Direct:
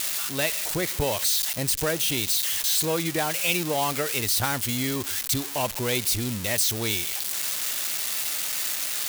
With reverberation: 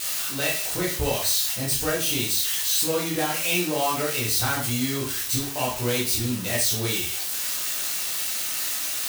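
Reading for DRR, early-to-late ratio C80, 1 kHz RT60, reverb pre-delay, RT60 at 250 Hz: -5.0 dB, 11.5 dB, 0.40 s, 6 ms, 0.40 s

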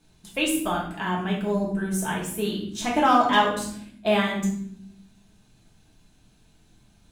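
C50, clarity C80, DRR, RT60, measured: 5.0 dB, 9.0 dB, -4.5 dB, not exponential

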